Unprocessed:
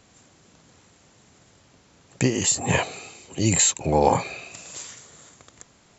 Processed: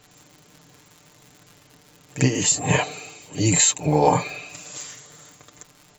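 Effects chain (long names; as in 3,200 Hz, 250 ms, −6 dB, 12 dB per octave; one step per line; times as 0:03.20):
echo ahead of the sound 47 ms −13 dB
surface crackle 95 per second −37 dBFS
comb filter 6.7 ms, depth 68%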